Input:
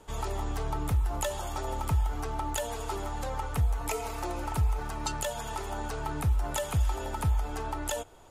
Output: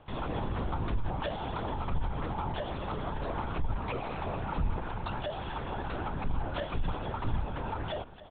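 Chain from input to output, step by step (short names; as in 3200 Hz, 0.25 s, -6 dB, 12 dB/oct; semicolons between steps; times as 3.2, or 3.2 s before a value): in parallel at -0.5 dB: limiter -25 dBFS, peak gain reduction 7 dB; on the sum: echo 0.272 s -15.5 dB; LPC vocoder at 8 kHz whisper; gain -7 dB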